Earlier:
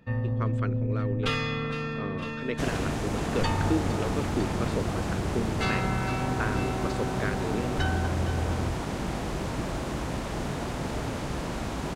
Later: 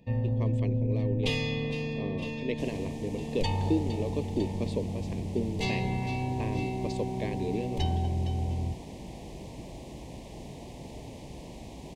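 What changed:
second sound -11.0 dB; master: add Butterworth band-stop 1400 Hz, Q 1.1

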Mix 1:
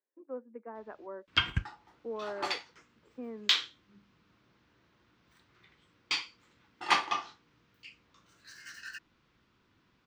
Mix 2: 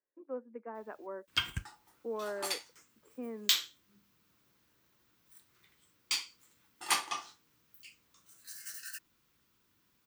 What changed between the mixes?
background -7.5 dB; master: remove air absorption 200 m

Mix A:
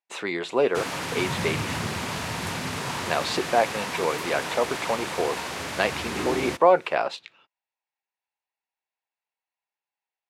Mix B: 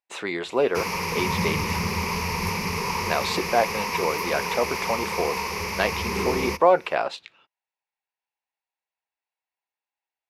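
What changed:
background: add ripple EQ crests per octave 0.83, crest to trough 15 dB; master: remove HPF 83 Hz

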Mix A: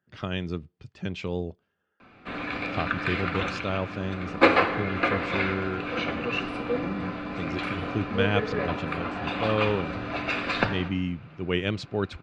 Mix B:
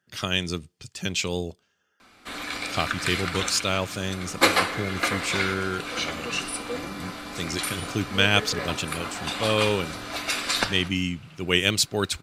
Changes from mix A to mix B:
background: send -9.0 dB; master: remove tape spacing loss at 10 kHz 39 dB

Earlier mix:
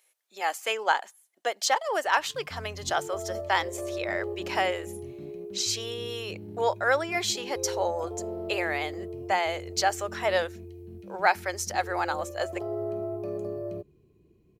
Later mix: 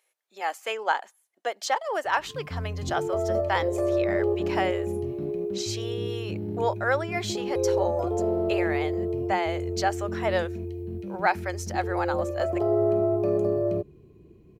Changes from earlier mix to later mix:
background +9.5 dB; master: add high shelf 3000 Hz -7.5 dB

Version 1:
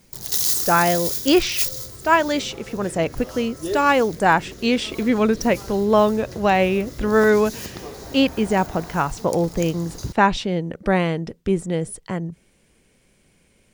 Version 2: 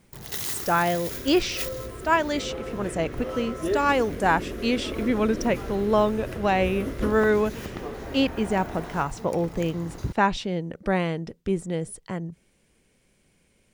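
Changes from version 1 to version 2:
speech -5.0 dB; first sound: add resonant high shelf 3500 Hz -10.5 dB, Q 1.5; second sound +9.0 dB

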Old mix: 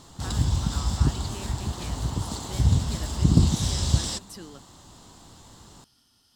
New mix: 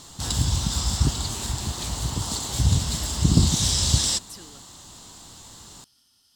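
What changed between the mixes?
speech -6.5 dB; master: add high shelf 2100 Hz +10 dB

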